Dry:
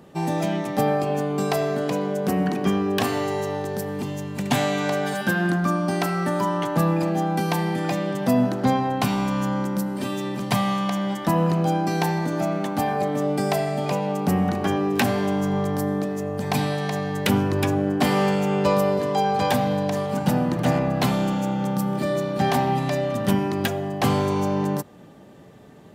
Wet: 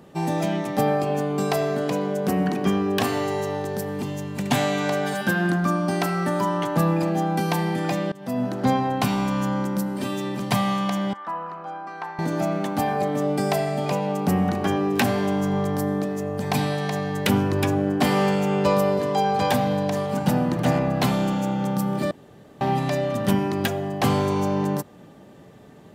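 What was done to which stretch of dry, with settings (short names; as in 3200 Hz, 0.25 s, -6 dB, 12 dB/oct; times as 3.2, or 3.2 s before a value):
8.12–8.7 fade in, from -21.5 dB
11.13–12.19 band-pass 1200 Hz, Q 2.7
22.11–22.61 room tone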